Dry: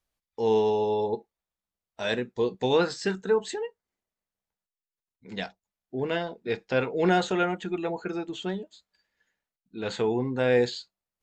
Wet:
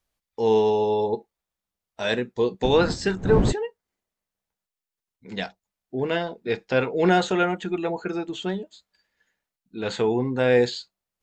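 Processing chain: 2.63–3.51 s: wind noise 230 Hz -19 dBFS; trim +3.5 dB

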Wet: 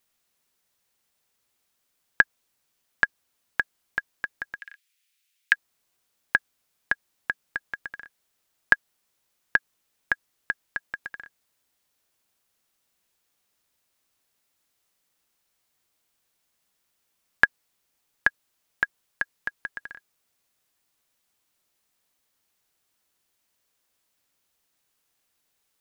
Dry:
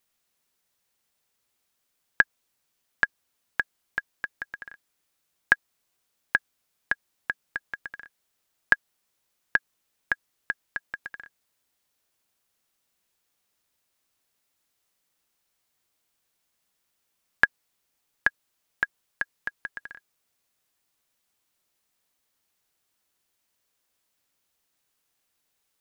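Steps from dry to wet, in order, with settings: 4.59–5.53 s: resonant high-pass 2.4 kHz, resonance Q 1.9; trim +1.5 dB

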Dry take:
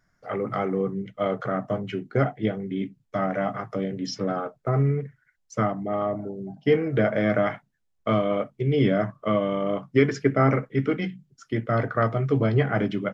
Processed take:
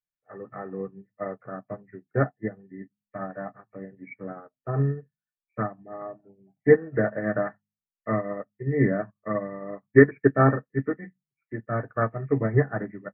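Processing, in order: knee-point frequency compression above 1.7 kHz 4:1; de-hum 51.56 Hz, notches 5; upward expansion 2.5:1, over -42 dBFS; trim +6 dB

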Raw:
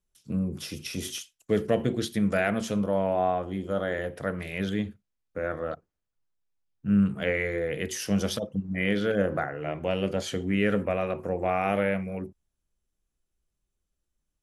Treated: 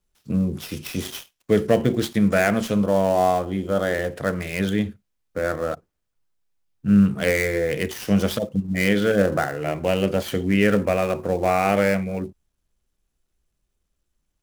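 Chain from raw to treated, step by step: dead-time distortion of 0.063 ms; trim +6.5 dB

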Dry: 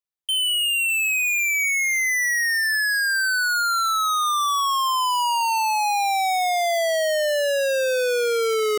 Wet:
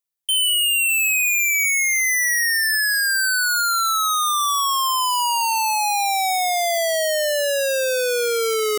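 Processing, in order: treble shelf 5.4 kHz +9.5 dB

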